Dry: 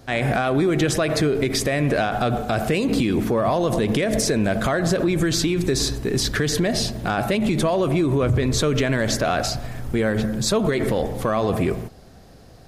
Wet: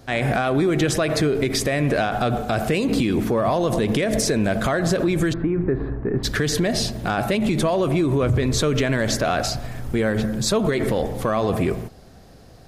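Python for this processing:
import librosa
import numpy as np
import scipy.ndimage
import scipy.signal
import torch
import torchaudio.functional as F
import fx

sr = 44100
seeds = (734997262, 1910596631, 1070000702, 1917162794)

y = fx.cheby2_lowpass(x, sr, hz=5400.0, order=4, stop_db=60, at=(5.32, 6.23), fade=0.02)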